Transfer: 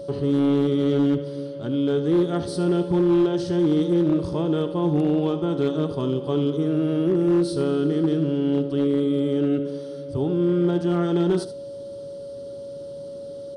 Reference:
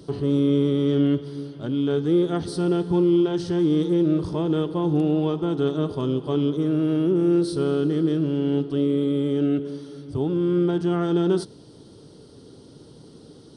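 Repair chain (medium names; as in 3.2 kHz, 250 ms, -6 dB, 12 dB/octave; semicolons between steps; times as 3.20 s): clip repair -14 dBFS; band-stop 560 Hz, Q 30; inverse comb 75 ms -12.5 dB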